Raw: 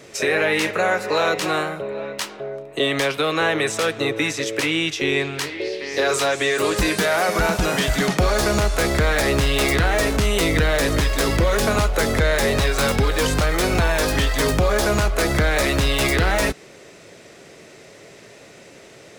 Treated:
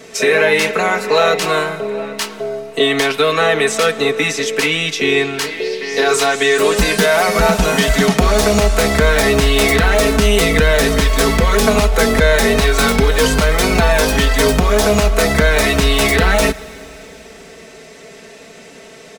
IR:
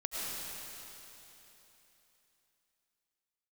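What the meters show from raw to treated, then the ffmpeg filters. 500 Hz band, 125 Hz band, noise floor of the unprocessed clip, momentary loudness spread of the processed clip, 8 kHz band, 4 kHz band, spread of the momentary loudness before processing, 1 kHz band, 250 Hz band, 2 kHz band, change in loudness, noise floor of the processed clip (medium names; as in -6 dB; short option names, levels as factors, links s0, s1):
+7.0 dB, +4.0 dB, -45 dBFS, 6 LU, +6.0 dB, +6.0 dB, 5 LU, +6.0 dB, +6.0 dB, +6.0 dB, +6.0 dB, -39 dBFS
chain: -filter_complex "[0:a]aecho=1:1:4.5:0.79,asplit=2[s0][s1];[1:a]atrim=start_sample=2205[s2];[s1][s2]afir=irnorm=-1:irlink=0,volume=0.075[s3];[s0][s3]amix=inputs=2:normalize=0,volume=1.5"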